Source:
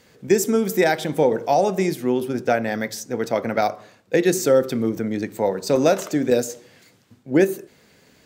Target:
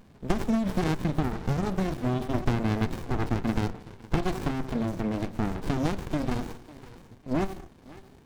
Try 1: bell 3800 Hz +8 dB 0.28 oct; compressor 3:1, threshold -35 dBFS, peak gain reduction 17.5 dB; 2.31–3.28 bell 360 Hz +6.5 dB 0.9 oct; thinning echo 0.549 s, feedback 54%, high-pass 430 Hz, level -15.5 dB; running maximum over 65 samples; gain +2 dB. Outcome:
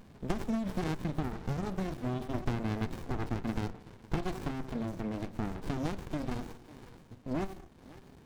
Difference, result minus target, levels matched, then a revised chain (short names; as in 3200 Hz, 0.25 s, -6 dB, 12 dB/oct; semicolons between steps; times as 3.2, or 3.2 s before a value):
compressor: peak gain reduction +7 dB
bell 3800 Hz +8 dB 0.28 oct; compressor 3:1, threshold -24.5 dBFS, peak gain reduction 10.5 dB; 2.31–3.28 bell 360 Hz +6.5 dB 0.9 oct; thinning echo 0.549 s, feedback 54%, high-pass 430 Hz, level -15.5 dB; running maximum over 65 samples; gain +2 dB